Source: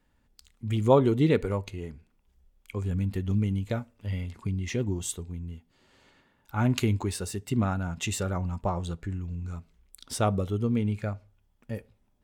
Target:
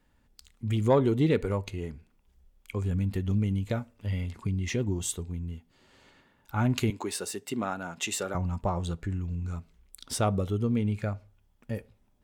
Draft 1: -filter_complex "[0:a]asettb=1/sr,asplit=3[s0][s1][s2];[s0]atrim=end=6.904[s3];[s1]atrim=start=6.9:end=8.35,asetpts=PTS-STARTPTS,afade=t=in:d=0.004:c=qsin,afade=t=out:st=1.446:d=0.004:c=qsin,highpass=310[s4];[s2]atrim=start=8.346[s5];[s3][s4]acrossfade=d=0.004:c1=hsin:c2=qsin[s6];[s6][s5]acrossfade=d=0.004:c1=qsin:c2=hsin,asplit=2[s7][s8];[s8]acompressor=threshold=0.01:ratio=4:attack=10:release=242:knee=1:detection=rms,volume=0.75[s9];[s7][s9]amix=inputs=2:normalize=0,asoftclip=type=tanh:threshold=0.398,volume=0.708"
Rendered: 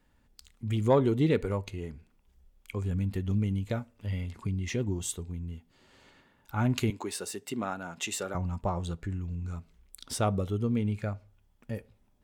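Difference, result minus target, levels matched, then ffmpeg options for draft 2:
compression: peak gain reduction +8.5 dB
-filter_complex "[0:a]asettb=1/sr,asplit=3[s0][s1][s2];[s0]atrim=end=6.904[s3];[s1]atrim=start=6.9:end=8.35,asetpts=PTS-STARTPTS,afade=t=in:d=0.004:c=qsin,afade=t=out:st=1.446:d=0.004:c=qsin,highpass=310[s4];[s2]atrim=start=8.346[s5];[s3][s4]acrossfade=d=0.004:c1=hsin:c2=qsin[s6];[s6][s5]acrossfade=d=0.004:c1=qsin:c2=hsin,asplit=2[s7][s8];[s8]acompressor=threshold=0.0355:ratio=4:attack=10:release=242:knee=1:detection=rms,volume=0.75[s9];[s7][s9]amix=inputs=2:normalize=0,asoftclip=type=tanh:threshold=0.398,volume=0.708"

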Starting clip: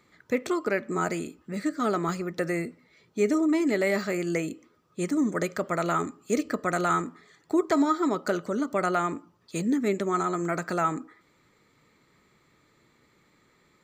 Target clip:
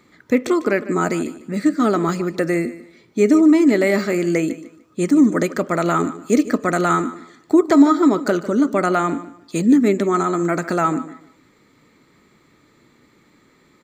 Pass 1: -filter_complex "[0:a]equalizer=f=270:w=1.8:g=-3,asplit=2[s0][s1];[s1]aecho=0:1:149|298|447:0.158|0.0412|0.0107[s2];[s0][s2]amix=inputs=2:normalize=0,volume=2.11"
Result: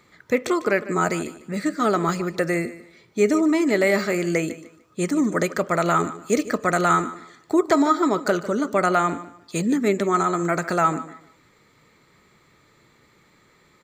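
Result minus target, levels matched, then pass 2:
250 Hz band -3.0 dB
-filter_complex "[0:a]equalizer=f=270:w=1.8:g=6.5,asplit=2[s0][s1];[s1]aecho=0:1:149|298|447:0.158|0.0412|0.0107[s2];[s0][s2]amix=inputs=2:normalize=0,volume=2.11"

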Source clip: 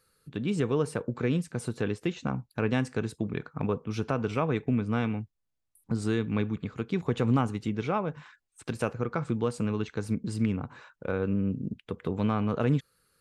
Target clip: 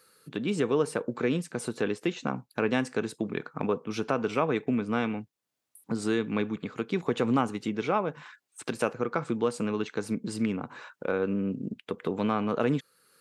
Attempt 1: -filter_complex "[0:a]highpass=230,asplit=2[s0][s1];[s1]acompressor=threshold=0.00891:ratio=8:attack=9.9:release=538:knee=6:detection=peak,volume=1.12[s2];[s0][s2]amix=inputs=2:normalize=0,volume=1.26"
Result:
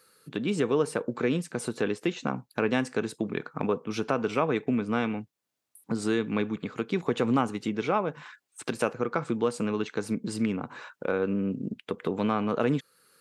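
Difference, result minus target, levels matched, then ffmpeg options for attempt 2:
compression: peak gain reduction -5.5 dB
-filter_complex "[0:a]highpass=230,asplit=2[s0][s1];[s1]acompressor=threshold=0.00422:ratio=8:attack=9.9:release=538:knee=6:detection=peak,volume=1.12[s2];[s0][s2]amix=inputs=2:normalize=0,volume=1.26"

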